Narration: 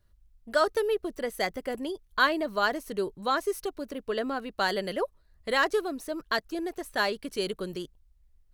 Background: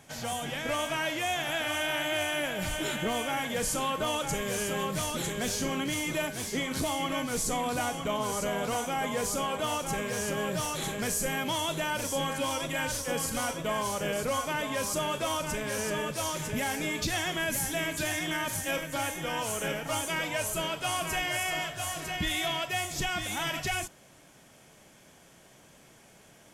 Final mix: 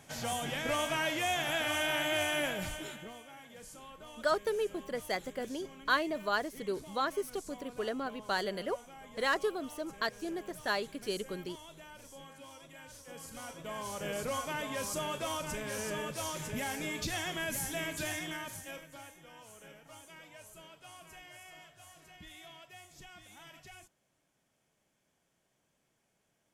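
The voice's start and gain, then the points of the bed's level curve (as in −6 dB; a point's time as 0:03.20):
3.70 s, −5.5 dB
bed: 0:02.49 −1.5 dB
0:03.23 −20.5 dB
0:12.84 −20.5 dB
0:14.16 −5.5 dB
0:18.12 −5.5 dB
0:19.25 −21.5 dB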